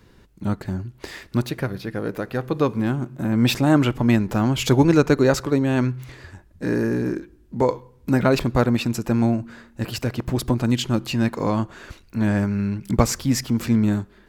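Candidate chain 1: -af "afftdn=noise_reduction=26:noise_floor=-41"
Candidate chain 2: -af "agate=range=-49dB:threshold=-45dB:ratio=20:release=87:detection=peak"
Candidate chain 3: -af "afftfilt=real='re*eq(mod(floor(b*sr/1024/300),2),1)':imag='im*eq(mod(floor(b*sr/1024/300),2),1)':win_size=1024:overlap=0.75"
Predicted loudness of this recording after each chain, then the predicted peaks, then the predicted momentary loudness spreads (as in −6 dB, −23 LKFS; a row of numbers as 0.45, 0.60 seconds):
−22.0, −22.0, −26.5 LKFS; −3.0, −3.0, −6.5 dBFS; 13, 13, 17 LU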